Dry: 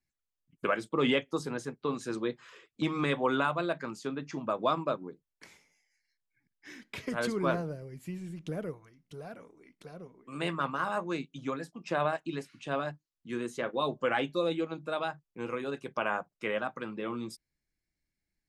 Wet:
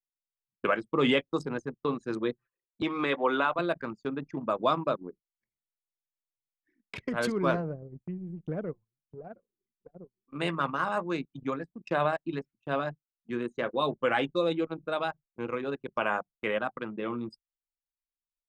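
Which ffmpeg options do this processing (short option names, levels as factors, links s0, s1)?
-filter_complex "[0:a]asettb=1/sr,asplit=3[s0][s1][s2];[s0]atrim=end=2.824[s3];[s1]atrim=start=2.82:end=3.59,asetpts=PTS-STARTPTS,afade=t=in:d=0.004:c=qsin,afade=t=out:st=0.766:d=0.004:c=qsin,acrossover=split=240 5300:gain=0.158 1 0.141[s4][s5][s6];[s4][s5][s6]amix=inputs=3:normalize=0[s7];[s2]atrim=start=3.586[s8];[s3][s7]acrossfade=d=0.004:c1=hsin:c2=qsin[s9];[s9][s8]acrossfade=d=0.004:c1=qsin:c2=hsin,anlmdn=0.631,agate=range=0.158:threshold=0.00282:ratio=16:detection=peak,volume=1.33"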